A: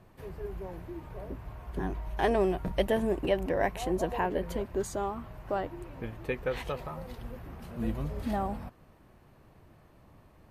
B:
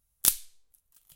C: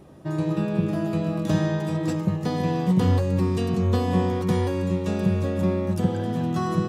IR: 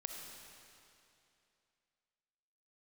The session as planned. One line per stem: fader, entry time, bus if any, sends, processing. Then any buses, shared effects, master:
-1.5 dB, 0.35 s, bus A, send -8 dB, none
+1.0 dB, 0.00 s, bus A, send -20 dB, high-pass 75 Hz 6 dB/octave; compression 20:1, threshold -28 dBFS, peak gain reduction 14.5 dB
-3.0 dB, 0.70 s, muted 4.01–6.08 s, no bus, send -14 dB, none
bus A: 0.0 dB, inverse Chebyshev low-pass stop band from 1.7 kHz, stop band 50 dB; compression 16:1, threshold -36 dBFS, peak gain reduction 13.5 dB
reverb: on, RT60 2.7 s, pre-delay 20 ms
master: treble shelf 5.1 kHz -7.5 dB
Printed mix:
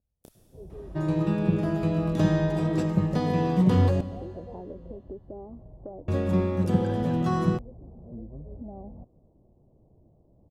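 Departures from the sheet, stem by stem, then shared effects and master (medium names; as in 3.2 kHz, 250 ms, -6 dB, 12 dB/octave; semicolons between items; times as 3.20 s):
stem A: send off; stem C: send -14 dB -> -6 dB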